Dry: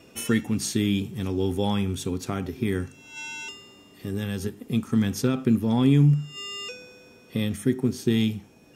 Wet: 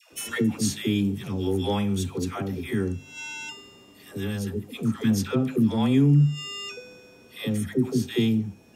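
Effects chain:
all-pass dispersion lows, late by 128 ms, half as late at 650 Hz

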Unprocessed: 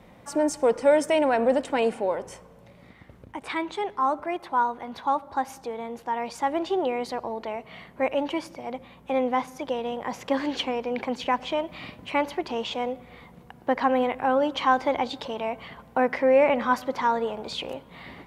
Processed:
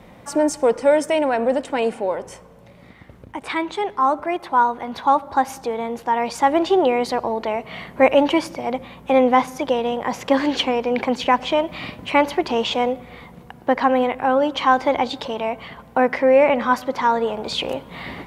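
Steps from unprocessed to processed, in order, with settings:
speech leveller 2 s
level +5 dB

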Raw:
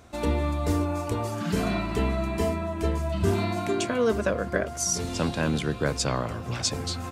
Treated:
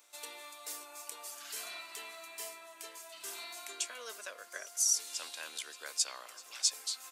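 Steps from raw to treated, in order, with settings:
Bessel high-pass filter 480 Hz, order 4
first difference
echo ahead of the sound 267 ms −23 dB

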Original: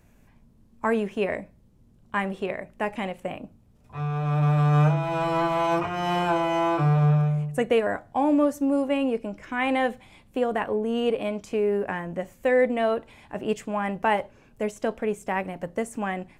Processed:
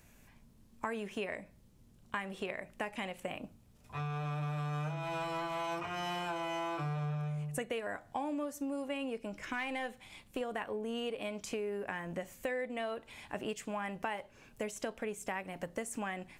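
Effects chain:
0:09.53–0:10.41: gain on one half-wave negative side −3 dB
tilt shelving filter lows −5 dB, about 1,500 Hz
downward compressor 6 to 1, threshold −35 dBFS, peak gain reduction 15 dB

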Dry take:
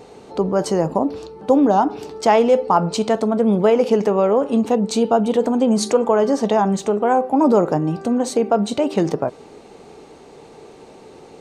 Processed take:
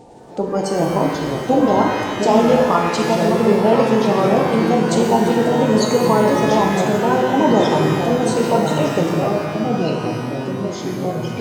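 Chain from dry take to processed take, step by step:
spectral magnitudes quantised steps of 30 dB
delay with pitch and tempo change per echo 316 ms, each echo −4 semitones, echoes 3, each echo −6 dB
reverb with rising layers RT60 1.7 s, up +12 semitones, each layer −8 dB, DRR 1 dB
level −1.5 dB

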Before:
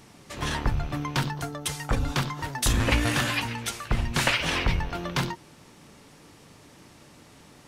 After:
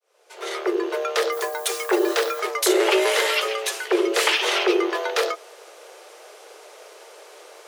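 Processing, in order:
fade in at the beginning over 1.23 s
in parallel at +1 dB: brickwall limiter −20.5 dBFS, peak gain reduction 10.5 dB
0:01.31–0:02.39: on the sum: background noise violet −41 dBFS
frequency shifter +320 Hz

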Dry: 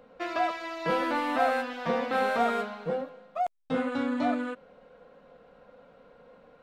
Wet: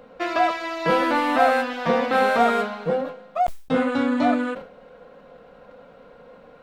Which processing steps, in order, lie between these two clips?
level that may fall only so fast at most 120 dB per second
level +7.5 dB

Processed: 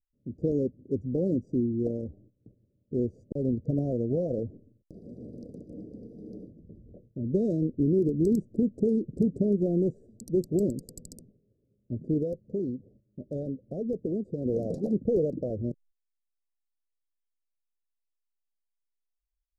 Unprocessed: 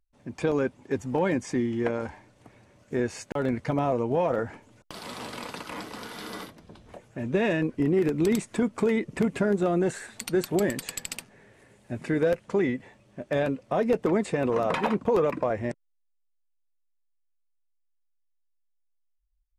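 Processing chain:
adaptive Wiener filter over 41 samples
high-shelf EQ 3,600 Hz −6.5 dB
noise gate −55 dBFS, range −13 dB
low-shelf EQ 400 Hz +6 dB
0:12.22–0:14.46: downward compressor 1.5 to 1, threshold −33 dBFS, peak gain reduction 6 dB
inverse Chebyshev band-stop filter 900–3,200 Hz, stop band 40 dB
level −3.5 dB

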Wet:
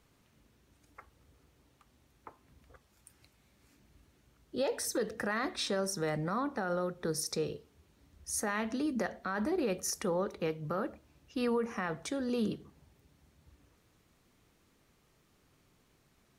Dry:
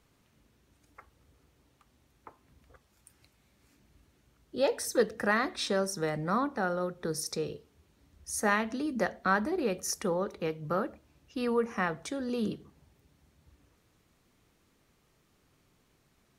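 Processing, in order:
brickwall limiter −24 dBFS, peak gain reduction 12 dB

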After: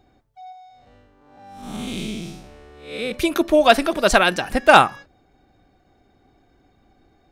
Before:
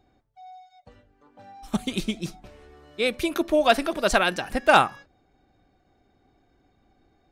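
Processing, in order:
0:00.52–0:03.12: spectrum smeared in time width 215 ms
level +5.5 dB

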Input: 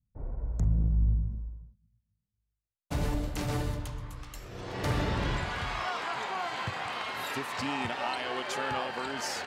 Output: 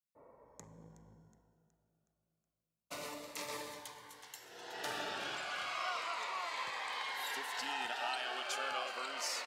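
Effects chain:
high-pass filter 650 Hz 12 dB per octave
repeating echo 369 ms, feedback 50%, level −15 dB
on a send at −16 dB: convolution reverb RT60 2.6 s, pre-delay 3 ms
on the sum: phaser whose notches keep moving one way falling 0.32 Hz
level −2 dB

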